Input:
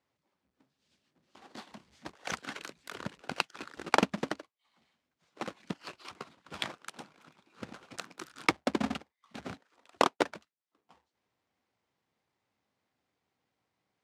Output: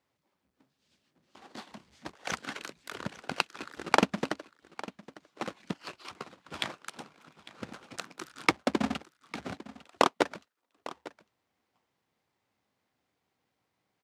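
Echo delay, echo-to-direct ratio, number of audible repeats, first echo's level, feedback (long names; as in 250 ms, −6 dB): 852 ms, −17.5 dB, 1, −17.5 dB, repeats not evenly spaced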